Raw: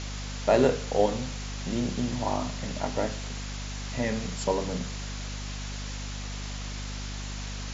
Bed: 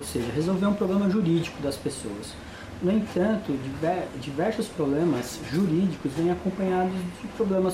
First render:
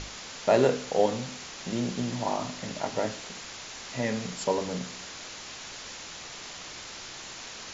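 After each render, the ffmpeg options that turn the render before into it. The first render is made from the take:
-af "bandreject=f=50:t=h:w=6,bandreject=f=100:t=h:w=6,bandreject=f=150:t=h:w=6,bandreject=f=200:t=h:w=6,bandreject=f=250:t=h:w=6,bandreject=f=300:t=h:w=6"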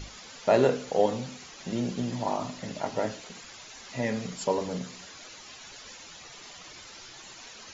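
-af "afftdn=nr=10:nf=-42"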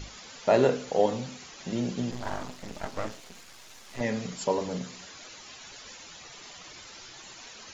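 -filter_complex "[0:a]asettb=1/sr,asplit=3[a][b][c];[a]atrim=end=2.114[d];[b]atrim=start=2.11:end=4.01,asetpts=PTS-STARTPTS,afade=t=in:d=0.004:c=qsin,afade=t=out:st=1.896:d=0.004:c=qsin,aeval=exprs='max(val(0),0)':c=same[e];[c]atrim=start=4.006[f];[d][e]acrossfade=d=0.004:c1=hsin:c2=qsin[g];[g][f]acrossfade=d=0.004:c1=qsin:c2=hsin"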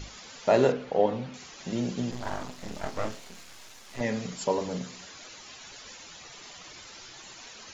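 -filter_complex "[0:a]asettb=1/sr,asplit=3[a][b][c];[a]atrim=end=0.724[d];[b]atrim=start=0.72:end=1.34,asetpts=PTS-STARTPTS,afade=t=in:d=0.004:c=qsin,afade=t=out:st=0.616:d=0.004:c=qsin,lowpass=2.8k[e];[c]atrim=start=1.336[f];[d][e]acrossfade=d=0.004:c1=hsin:c2=qsin[g];[g][f]acrossfade=d=0.004:c1=qsin:c2=hsin,asettb=1/sr,asplit=3[h][i][j];[h]atrim=end=2.554[k];[i]atrim=start=2.55:end=3.69,asetpts=PTS-STARTPTS,afade=t=in:d=0.004:c=qsin,afade=t=out:st=1.136:d=0.004:c=qsin,asplit=2[l][m];[m]adelay=28,volume=-5.5dB[n];[l][n]amix=inputs=2:normalize=0,atrim=end_sample=50274[o];[j]atrim=start=3.686[p];[k][o]acrossfade=d=0.004:c1=hsin:c2=qsin[q];[q][p]acrossfade=d=0.004:c1=qsin:c2=hsin"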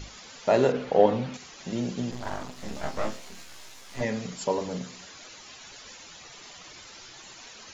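-filter_complex "[0:a]asettb=1/sr,asplit=3[a][b][c];[a]atrim=end=0.744[d];[b]atrim=start=0.74:end=1.37,asetpts=PTS-STARTPTS,afade=t=in:d=0.004:c=qsin,afade=t=out:st=0.626:d=0.004:c=qsin,acontrast=22[e];[c]atrim=start=1.366[f];[d][e]acrossfade=d=0.004:c1=hsin:c2=qsin[g];[g][f]acrossfade=d=0.004:c1=qsin:c2=hsin,asettb=1/sr,asplit=3[h][i][j];[h]atrim=end=2.554[k];[i]atrim=start=2.55:end=4.05,asetpts=PTS-STARTPTS,afade=t=in:d=0.004:c=qsin,afade=t=out:st=1.496:d=0.004:c=qsin,asplit=2[l][m];[m]adelay=15,volume=-3dB[n];[l][n]amix=inputs=2:normalize=0,atrim=end_sample=66150[o];[j]atrim=start=4.046[p];[k][o]acrossfade=d=0.004:c1=hsin:c2=qsin[q];[q][p]acrossfade=d=0.004:c1=qsin:c2=hsin"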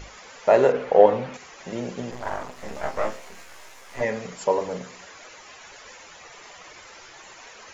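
-af "equalizer=f=125:t=o:w=1:g=-3,equalizer=f=250:t=o:w=1:g=-4,equalizer=f=500:t=o:w=1:g=6,equalizer=f=1k:t=o:w=1:g=4,equalizer=f=2k:t=o:w=1:g=5,equalizer=f=4k:t=o:w=1:g=-5"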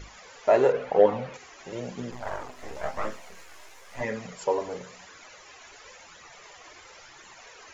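-af "flanger=delay=0.5:depth=2.6:regen=-32:speed=0.97:shape=triangular"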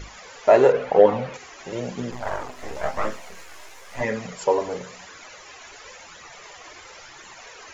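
-af "volume=5.5dB,alimiter=limit=-3dB:level=0:latency=1"

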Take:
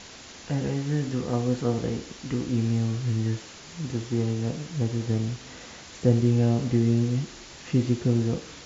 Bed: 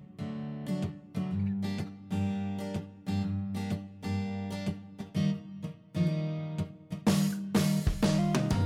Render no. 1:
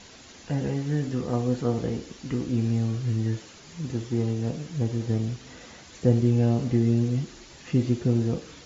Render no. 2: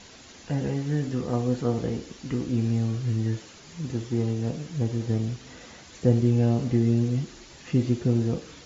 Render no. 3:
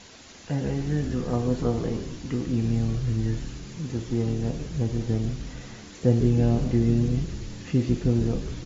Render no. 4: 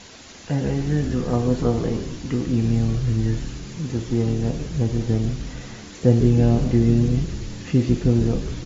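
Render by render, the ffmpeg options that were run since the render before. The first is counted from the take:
-af "afftdn=nr=6:nf=-45"
-af anull
-filter_complex "[0:a]asplit=9[a][b][c][d][e][f][g][h][i];[b]adelay=146,afreqshift=-81,volume=-9.5dB[j];[c]adelay=292,afreqshift=-162,volume=-13.7dB[k];[d]adelay=438,afreqshift=-243,volume=-17.8dB[l];[e]adelay=584,afreqshift=-324,volume=-22dB[m];[f]adelay=730,afreqshift=-405,volume=-26.1dB[n];[g]adelay=876,afreqshift=-486,volume=-30.3dB[o];[h]adelay=1022,afreqshift=-567,volume=-34.4dB[p];[i]adelay=1168,afreqshift=-648,volume=-38.6dB[q];[a][j][k][l][m][n][o][p][q]amix=inputs=9:normalize=0"
-af "volume=4.5dB"

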